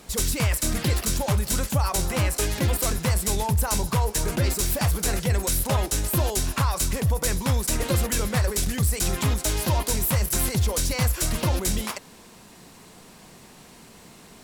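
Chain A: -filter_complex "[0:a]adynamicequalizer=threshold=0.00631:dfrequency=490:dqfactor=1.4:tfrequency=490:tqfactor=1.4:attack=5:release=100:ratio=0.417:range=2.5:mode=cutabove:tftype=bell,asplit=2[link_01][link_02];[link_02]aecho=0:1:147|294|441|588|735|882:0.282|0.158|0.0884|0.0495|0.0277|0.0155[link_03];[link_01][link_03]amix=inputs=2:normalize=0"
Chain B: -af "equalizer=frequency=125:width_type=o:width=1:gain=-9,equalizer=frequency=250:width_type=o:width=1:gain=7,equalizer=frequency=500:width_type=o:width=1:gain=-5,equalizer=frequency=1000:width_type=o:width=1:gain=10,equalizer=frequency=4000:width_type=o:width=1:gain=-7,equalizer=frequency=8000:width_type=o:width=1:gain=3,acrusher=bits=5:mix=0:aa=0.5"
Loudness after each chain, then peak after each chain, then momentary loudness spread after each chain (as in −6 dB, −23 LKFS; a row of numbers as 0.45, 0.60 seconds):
−24.0, −23.5 LKFS; −11.0, −9.5 dBFS; 2, 2 LU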